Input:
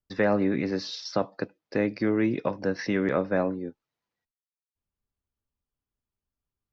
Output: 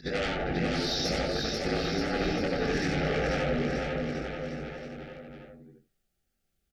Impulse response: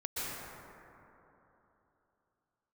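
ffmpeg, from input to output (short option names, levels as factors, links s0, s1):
-filter_complex "[0:a]afftfilt=real='re':imag='-im':win_size=8192:overlap=0.75,aeval=exprs='0.158*sin(PI/2*4.47*val(0)/0.158)':c=same,equalizer=f=870:w=4.6:g=2,acompressor=threshold=0.0631:ratio=10,afreqshift=-38,bandreject=f=50:t=h:w=6,bandreject=f=100:t=h:w=6,bandreject=f=150:t=h:w=6,bandreject=f=200:t=h:w=6,bandreject=f=250:t=h:w=6,bandreject=f=300:t=h:w=6,flanger=delay=19:depth=4.2:speed=0.57,asuperstop=centerf=1000:order=4:qfactor=2.2,asplit=2[s0][s1];[s1]aecho=0:1:490|931|1328|1685|2007:0.631|0.398|0.251|0.158|0.1[s2];[s0][s2]amix=inputs=2:normalize=0"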